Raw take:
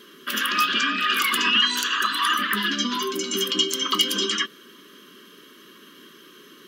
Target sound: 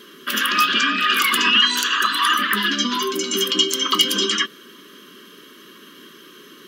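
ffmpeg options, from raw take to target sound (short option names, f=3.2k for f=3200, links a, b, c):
-filter_complex "[0:a]asettb=1/sr,asplit=3[a][b][c];[a]atrim=end=1.544[d];[b]atrim=start=1.54:end=4.05,asetpts=PTS-STARTPTS,afade=t=in:d=0.004:c=qsin,afade=t=out:st=2.506:d=0.004:c=qsin,highpass=170[e];[c]atrim=start=4.046[f];[d][e]acrossfade=d=0.004:c1=hsin:c2=qsin[g];[g][f]acrossfade=d=0.004:c1=qsin:c2=hsin,volume=4dB"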